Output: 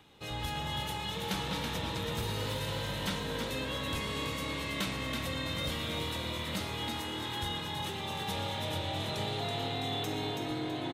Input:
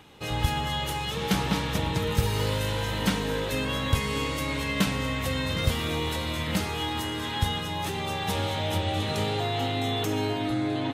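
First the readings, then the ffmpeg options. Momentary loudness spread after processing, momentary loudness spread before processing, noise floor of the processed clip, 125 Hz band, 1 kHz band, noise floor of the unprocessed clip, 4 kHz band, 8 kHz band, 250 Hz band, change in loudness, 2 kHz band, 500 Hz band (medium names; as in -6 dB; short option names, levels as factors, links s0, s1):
2 LU, 3 LU, -38 dBFS, -9.0 dB, -6.5 dB, -32 dBFS, -4.5 dB, -6.5 dB, -8.5 dB, -7.0 dB, -6.5 dB, -7.5 dB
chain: -filter_complex "[0:a]equalizer=f=3700:w=4.9:g=4.5,acrossover=split=520|2100[s0][s1][s2];[s0]asoftclip=type=tanh:threshold=0.0596[s3];[s3][s1][s2]amix=inputs=3:normalize=0,asplit=5[s4][s5][s6][s7][s8];[s5]adelay=328,afreqshift=40,volume=0.562[s9];[s6]adelay=656,afreqshift=80,volume=0.186[s10];[s7]adelay=984,afreqshift=120,volume=0.061[s11];[s8]adelay=1312,afreqshift=160,volume=0.0202[s12];[s4][s9][s10][s11][s12]amix=inputs=5:normalize=0,volume=0.398"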